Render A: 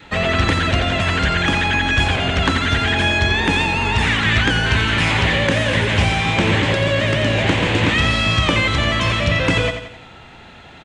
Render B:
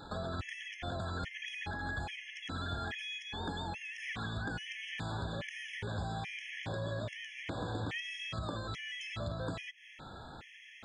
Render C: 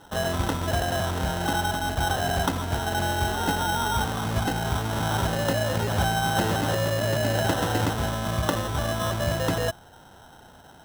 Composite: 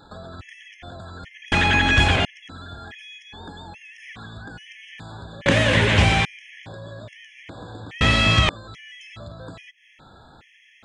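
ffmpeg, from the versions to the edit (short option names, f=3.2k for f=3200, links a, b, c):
-filter_complex "[0:a]asplit=3[a][b][c];[1:a]asplit=4[d][e][f][g];[d]atrim=end=1.522[h];[a]atrim=start=1.518:end=2.252[i];[e]atrim=start=2.248:end=5.462[j];[b]atrim=start=5.458:end=6.252[k];[f]atrim=start=6.248:end=8.012[l];[c]atrim=start=8.008:end=8.492[m];[g]atrim=start=8.488[n];[h][i]acrossfade=d=0.004:c1=hsin:c2=hsin[o];[o][j]acrossfade=d=0.004:c1=hsin:c2=hsin[p];[p][k]acrossfade=d=0.004:c1=hsin:c2=hsin[q];[q][l]acrossfade=d=0.004:c1=hsin:c2=hsin[r];[r][m]acrossfade=d=0.004:c1=hsin:c2=hsin[s];[s][n]acrossfade=d=0.004:c1=hsin:c2=hsin"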